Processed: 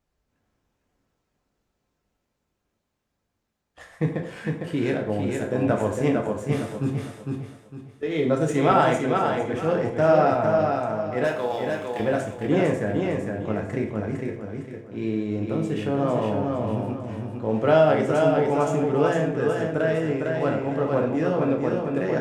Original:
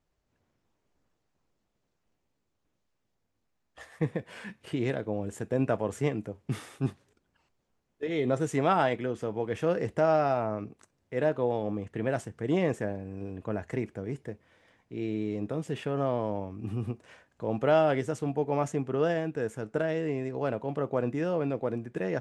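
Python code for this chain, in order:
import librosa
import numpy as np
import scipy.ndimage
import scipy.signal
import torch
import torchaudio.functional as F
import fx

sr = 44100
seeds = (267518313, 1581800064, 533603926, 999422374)

p1 = fx.backlash(x, sr, play_db=-38.5)
p2 = x + (p1 * 10.0 ** (-6.5 / 20.0))
p3 = fx.tilt_eq(p2, sr, slope=4.5, at=(11.24, 12.0))
p4 = fx.echo_feedback(p3, sr, ms=455, feedback_pct=32, wet_db=-4.0)
p5 = fx.rev_plate(p4, sr, seeds[0], rt60_s=0.6, hf_ratio=0.75, predelay_ms=0, drr_db=1.5)
y = fx.band_widen(p5, sr, depth_pct=40, at=(8.71, 10.59))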